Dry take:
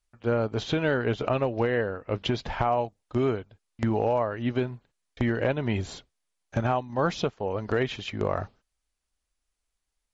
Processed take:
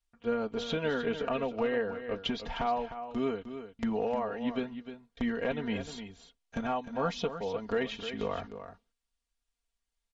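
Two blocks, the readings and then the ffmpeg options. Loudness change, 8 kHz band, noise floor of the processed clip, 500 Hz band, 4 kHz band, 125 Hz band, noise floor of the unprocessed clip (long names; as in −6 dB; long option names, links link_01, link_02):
−5.5 dB, can't be measured, −85 dBFS, −5.0 dB, −2.5 dB, −14.0 dB, −82 dBFS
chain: -filter_complex "[0:a]equalizer=frequency=3300:width=2.3:gain=3.5,aresample=22050,aresample=44100,aecho=1:1:4.3:0.8,asplit=2[link_01][link_02];[link_02]aecho=0:1:305:0.299[link_03];[link_01][link_03]amix=inputs=2:normalize=0,volume=-8dB"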